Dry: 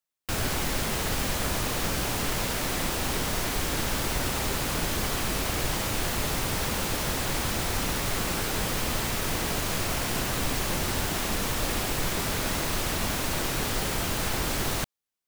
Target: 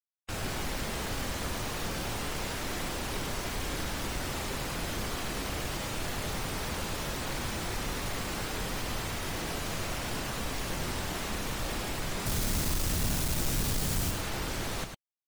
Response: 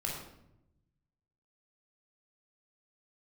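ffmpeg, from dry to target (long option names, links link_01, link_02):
-filter_complex "[0:a]asettb=1/sr,asplit=3[link_01][link_02][link_03];[link_01]atrim=end=12.264[link_04];[link_02]atrim=start=12.26:end=14.11,asetpts=PTS-STARTPTS,afade=type=in:duration=0.004:curve=qsin,afade=type=out:start_time=1.846:duration=0.004:curve=qsin,bass=frequency=250:gain=10,treble=frequency=4000:gain=7[link_05];[link_03]atrim=start=14.106[link_06];[link_04][link_05]acrossfade=duration=0.004:curve1=hsin:curve2=qsin[link_07];[link_07][link_06]acrossfade=duration=0.004:curve1=qsin:curve2=hsin,afftfilt=real='re*gte(hypot(re,im),0.0178)':imag='im*gte(hypot(re,im),0.0178)':win_size=1024:overlap=0.75,asoftclip=type=tanh:threshold=-19.5dB,aecho=1:1:29.15|102:0.282|0.447,volume=-5.5dB"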